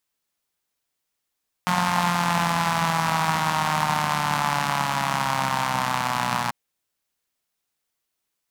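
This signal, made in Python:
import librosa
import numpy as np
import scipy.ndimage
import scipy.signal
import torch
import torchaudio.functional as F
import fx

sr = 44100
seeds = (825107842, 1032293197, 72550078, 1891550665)

y = fx.engine_four_rev(sr, seeds[0], length_s=4.84, rpm=5400, resonances_hz=(180.0, 910.0), end_rpm=3600)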